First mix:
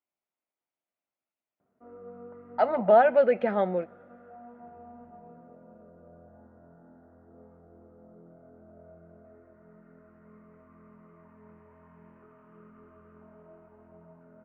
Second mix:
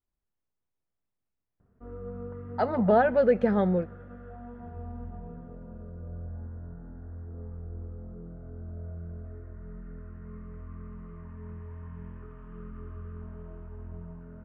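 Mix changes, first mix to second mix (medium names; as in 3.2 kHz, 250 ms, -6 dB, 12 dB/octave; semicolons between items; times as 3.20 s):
speech: add tape spacing loss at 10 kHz 37 dB; master: remove cabinet simulation 320–2500 Hz, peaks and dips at 440 Hz -6 dB, 640 Hz +4 dB, 1.1 kHz -4 dB, 1.7 kHz -7 dB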